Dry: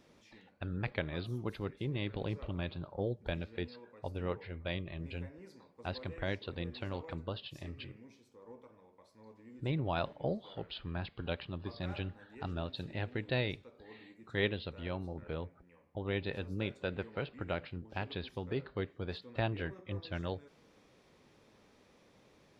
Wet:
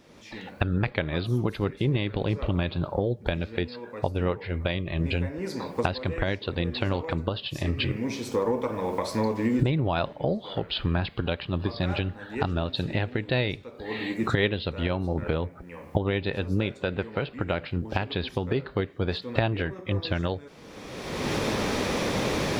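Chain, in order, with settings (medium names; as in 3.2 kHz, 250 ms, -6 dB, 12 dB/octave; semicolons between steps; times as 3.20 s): recorder AGC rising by 30 dB/s; trim +7.5 dB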